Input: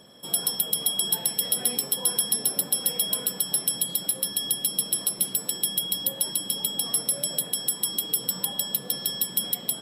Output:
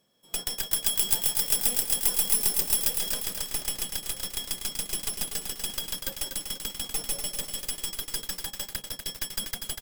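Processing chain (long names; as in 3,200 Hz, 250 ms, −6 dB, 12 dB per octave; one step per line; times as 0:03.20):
stylus tracing distortion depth 0.09 ms
log-companded quantiser 4 bits
noise gate −28 dBFS, range −16 dB
0:00.66–0:02.91: high-shelf EQ 8,400 Hz +9 dB
single-tap delay 162 ms −12 dB
feedback echo at a low word length 243 ms, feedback 55%, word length 6 bits, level −5 dB
level −4 dB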